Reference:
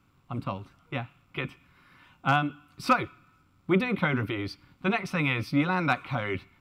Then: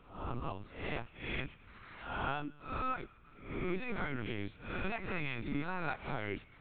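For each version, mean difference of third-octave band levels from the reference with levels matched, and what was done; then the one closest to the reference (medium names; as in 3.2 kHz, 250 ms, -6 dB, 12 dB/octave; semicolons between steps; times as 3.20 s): 8.0 dB: reverse spectral sustain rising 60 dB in 0.49 s; compression 4:1, threshold -40 dBFS, peak gain reduction 20.5 dB; LPC vocoder at 8 kHz pitch kept; trim +3 dB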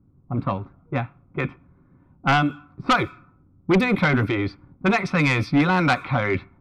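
3.5 dB: level-controlled noise filter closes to 340 Hz, open at -23 dBFS; band-stop 2.9 kHz, Q 5.1; in parallel at -8.5 dB: sine folder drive 10 dB, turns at -10 dBFS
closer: second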